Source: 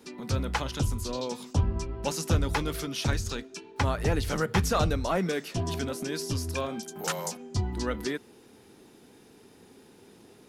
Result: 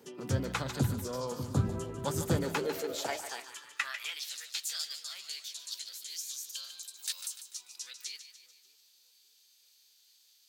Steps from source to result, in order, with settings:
echo with a time of its own for lows and highs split 530 Hz, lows 588 ms, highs 147 ms, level −10.5 dB
high-pass filter sweep 120 Hz → 3,300 Hz, 0:02.22–0:04.32
formants moved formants +4 semitones
level −5 dB

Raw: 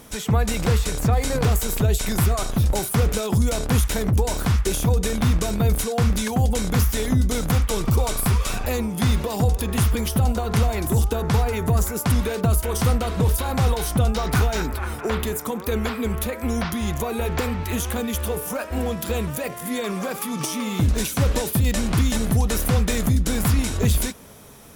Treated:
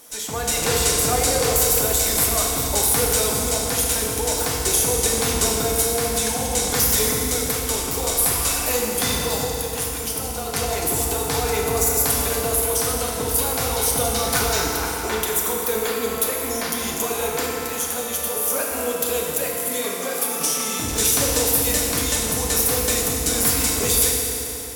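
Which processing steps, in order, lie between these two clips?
bass and treble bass −14 dB, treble +9 dB
automatic gain control
tuned comb filter 530 Hz, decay 0.62 s, mix 50%
feedback delay network reverb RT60 3.2 s, high-frequency decay 0.8×, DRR −2 dB

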